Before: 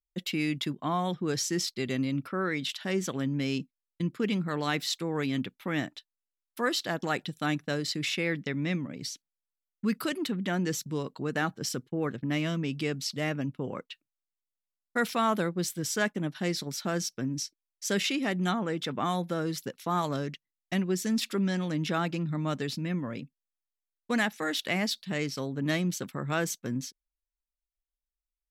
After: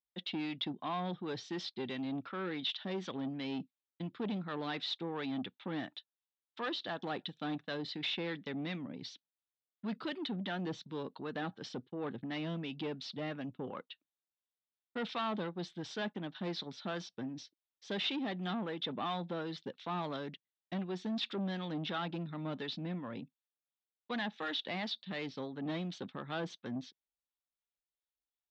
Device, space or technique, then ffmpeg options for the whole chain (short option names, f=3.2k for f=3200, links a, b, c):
guitar amplifier with harmonic tremolo: -filter_complex "[0:a]acrossover=split=640[a][b];[a]aeval=exprs='val(0)*(1-0.5/2+0.5/2*cos(2*PI*2.8*n/s))':c=same[c];[b]aeval=exprs='val(0)*(1-0.5/2-0.5/2*cos(2*PI*2.8*n/s))':c=same[d];[c][d]amix=inputs=2:normalize=0,asoftclip=type=tanh:threshold=-29.5dB,highpass=92,equalizer=f=140:t=q:w=4:g=-6,equalizer=f=820:t=q:w=4:g=4,equalizer=f=2.2k:t=q:w=4:g=-3,equalizer=f=3.6k:t=q:w=4:g=8,lowpass=f=4k:w=0.5412,lowpass=f=4k:w=1.3066,volume=-2.5dB"